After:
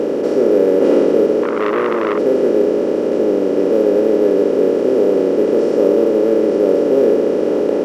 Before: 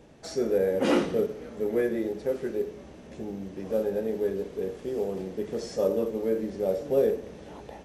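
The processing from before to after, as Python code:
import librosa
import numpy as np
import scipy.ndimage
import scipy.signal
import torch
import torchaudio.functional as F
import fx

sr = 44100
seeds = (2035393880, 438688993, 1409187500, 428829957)

y = fx.bin_compress(x, sr, power=0.2)
y = fx.peak_eq(y, sr, hz=390.0, db=14.5, octaves=2.2)
y = fx.transformer_sat(y, sr, knee_hz=1200.0, at=(1.43, 2.18))
y = y * 10.0 ** (-7.5 / 20.0)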